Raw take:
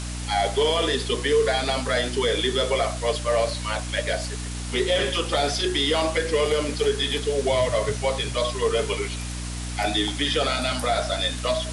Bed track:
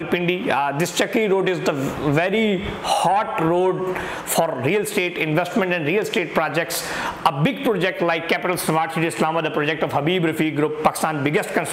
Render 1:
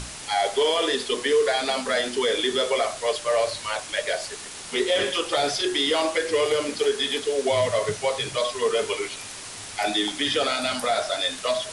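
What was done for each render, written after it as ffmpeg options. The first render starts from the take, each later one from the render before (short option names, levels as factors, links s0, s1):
-af "bandreject=f=60:t=h:w=6,bandreject=f=120:t=h:w=6,bandreject=f=180:t=h:w=6,bandreject=f=240:t=h:w=6,bandreject=f=300:t=h:w=6"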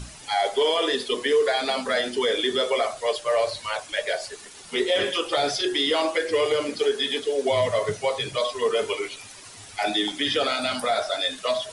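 -af "afftdn=nr=10:nf=-38"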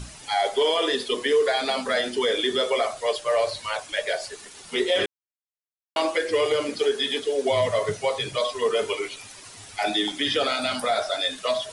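-filter_complex "[0:a]asplit=3[s0][s1][s2];[s0]atrim=end=5.06,asetpts=PTS-STARTPTS,afade=t=out:st=5.056:d=0.004:c=hsin[s3];[s1]atrim=start=5.06:end=5.96,asetpts=PTS-STARTPTS,volume=0[s4];[s2]atrim=start=5.96,asetpts=PTS-STARTPTS,afade=t=in:d=0.004:c=hsin[s5];[s3][s4][s5]concat=n=3:v=0:a=1"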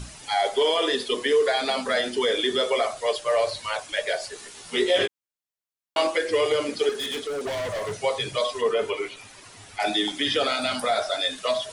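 -filter_complex "[0:a]asettb=1/sr,asplit=3[s0][s1][s2];[s0]atrim=end=4.344[s3];[s1]atrim=start=4.34:end=6.07,asetpts=PTS-STARTPTS,afade=t=in:d=0.004:c=qsin,afade=t=out:st=1.726:d=0.004:c=qsin,asplit=2[s4][s5];[s5]adelay=17,volume=0.596[s6];[s4][s6]amix=inputs=2:normalize=0,atrim=end_sample=76293[s7];[s2]atrim=start=6.066[s8];[s3][s7]acrossfade=d=0.004:c1=hsin:c2=qsin[s9];[s9][s8]acrossfade=d=0.004:c1=qsin:c2=hsin,asettb=1/sr,asplit=3[s10][s11][s12];[s10]atrim=end=6.894[s13];[s11]atrim=start=6.89:end=7.93,asetpts=PTS-STARTPTS,afade=t=in:d=0.004:c=qsin,afade=t=out:st=1.036:d=0.004:c=qsin,volume=22.4,asoftclip=hard,volume=0.0447[s14];[s12]atrim=start=7.926[s15];[s13][s14]acrossfade=d=0.004:c1=hsin:c2=qsin[s16];[s16][s15]acrossfade=d=0.004:c1=qsin:c2=hsin,asettb=1/sr,asplit=3[s17][s18][s19];[s17]atrim=end=8.614[s20];[s18]atrim=start=8.61:end=9.8,asetpts=PTS-STARTPTS,afade=t=in:d=0.004:c=qsin,afade=t=out:st=1.186:d=0.004:c=qsin,acrossover=split=3100[s21][s22];[s22]acompressor=threshold=0.00447:ratio=4:attack=1:release=60[s23];[s21][s23]amix=inputs=2:normalize=0[s24];[s19]atrim=start=9.796[s25];[s20][s24]acrossfade=d=0.004:c1=hsin:c2=qsin[s26];[s26][s25]acrossfade=d=0.004:c1=qsin:c2=hsin"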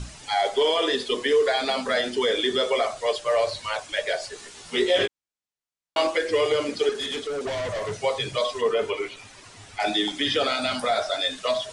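-af "lowpass=f=9000:w=0.5412,lowpass=f=9000:w=1.3066,lowshelf=f=120:g=4"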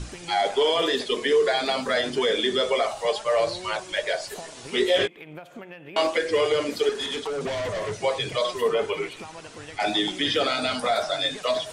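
-filter_complex "[1:a]volume=0.0841[s0];[0:a][s0]amix=inputs=2:normalize=0"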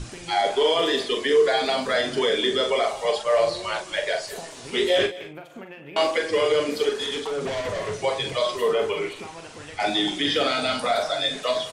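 -filter_complex "[0:a]asplit=2[s0][s1];[s1]adelay=42,volume=0.473[s2];[s0][s2]amix=inputs=2:normalize=0,aecho=1:1:209:0.126"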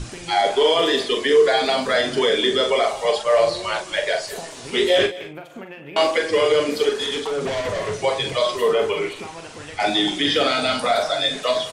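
-af "volume=1.5"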